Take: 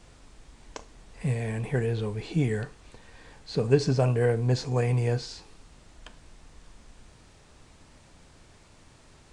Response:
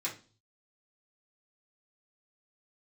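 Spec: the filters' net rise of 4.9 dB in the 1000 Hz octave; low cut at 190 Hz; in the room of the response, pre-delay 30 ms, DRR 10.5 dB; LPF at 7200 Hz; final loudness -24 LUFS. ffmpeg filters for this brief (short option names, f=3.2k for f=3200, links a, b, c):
-filter_complex "[0:a]highpass=190,lowpass=7.2k,equalizer=f=1k:t=o:g=7,asplit=2[a][b];[1:a]atrim=start_sample=2205,adelay=30[c];[b][c]afir=irnorm=-1:irlink=0,volume=-13.5dB[d];[a][d]amix=inputs=2:normalize=0,volume=5dB"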